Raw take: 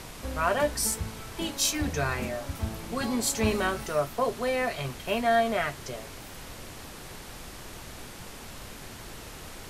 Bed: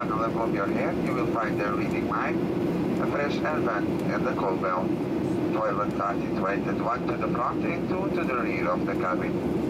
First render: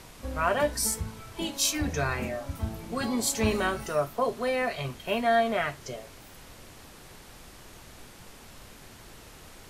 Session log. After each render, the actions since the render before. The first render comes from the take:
noise reduction from a noise print 6 dB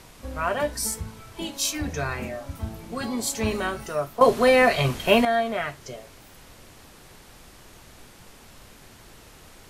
0:04.21–0:05.25: clip gain +11 dB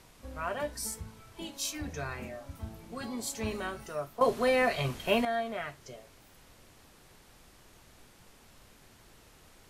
level −9 dB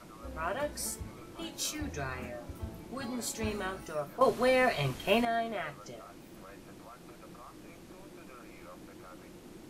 mix in bed −24.5 dB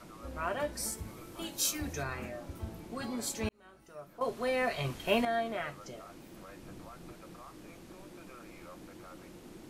0:00.97–0:02.02: high-shelf EQ 11,000 Hz → 6,900 Hz +11 dB
0:03.49–0:05.42: fade in
0:06.63–0:07.14: low-shelf EQ 160 Hz +8 dB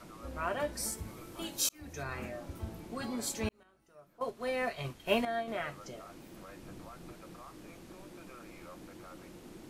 0:01.69–0:02.18: fade in
0:03.63–0:05.48: expander for the loud parts, over −44 dBFS

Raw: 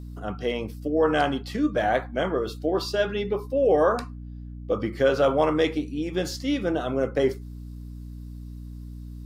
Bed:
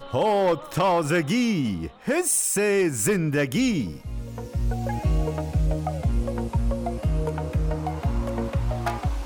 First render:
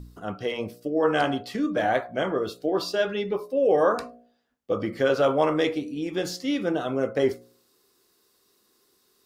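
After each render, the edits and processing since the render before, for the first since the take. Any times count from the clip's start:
hum removal 60 Hz, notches 12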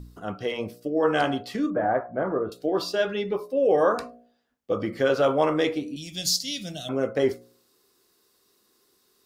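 0:01.70–0:02.52: low-pass filter 1,500 Hz 24 dB per octave
0:05.96–0:06.89: drawn EQ curve 180 Hz 0 dB, 430 Hz −24 dB, 660 Hz −6 dB, 970 Hz −27 dB, 4,200 Hz +12 dB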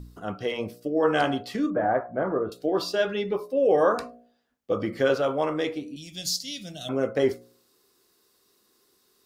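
0:05.18–0:06.81: clip gain −4 dB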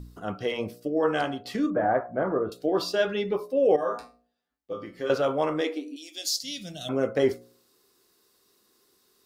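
0:00.84–0:01.45: fade out, to −8 dB
0:03.76–0:05.10: tuned comb filter 57 Hz, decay 0.27 s, harmonics odd, mix 90%
0:05.61–0:06.43: linear-phase brick-wall high-pass 240 Hz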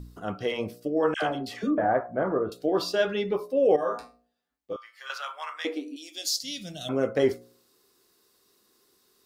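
0:01.14–0:01.78: all-pass dispersion lows, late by 87 ms, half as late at 1,000 Hz
0:04.76–0:05.65: high-pass filter 1,100 Hz 24 dB per octave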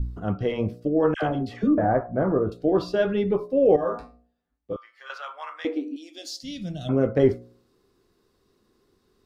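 RIAA equalisation playback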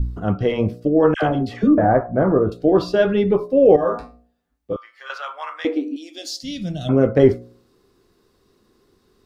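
level +6 dB
brickwall limiter −2 dBFS, peak gain reduction 0.5 dB

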